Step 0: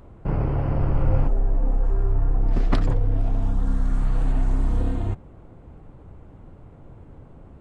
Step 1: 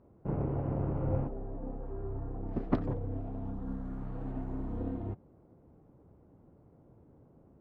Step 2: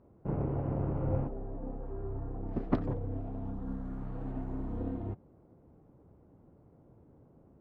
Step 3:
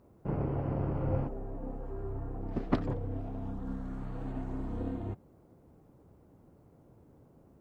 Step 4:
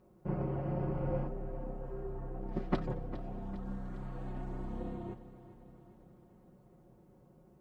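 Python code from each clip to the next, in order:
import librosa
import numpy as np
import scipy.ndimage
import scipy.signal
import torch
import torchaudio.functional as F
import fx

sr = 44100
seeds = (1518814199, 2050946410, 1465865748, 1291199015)

y1 = fx.bandpass_q(x, sr, hz=320.0, q=0.59)
y1 = fx.upward_expand(y1, sr, threshold_db=-38.0, expansion=1.5)
y1 = y1 * librosa.db_to_amplitude(-1.5)
y2 = y1
y3 = fx.high_shelf(y2, sr, hz=2200.0, db=11.0)
y4 = y3 + 0.72 * np.pad(y3, (int(5.5 * sr / 1000.0), 0))[:len(y3)]
y4 = fx.echo_feedback(y4, sr, ms=404, feedback_pct=60, wet_db=-14)
y4 = y4 * librosa.db_to_amplitude(-4.0)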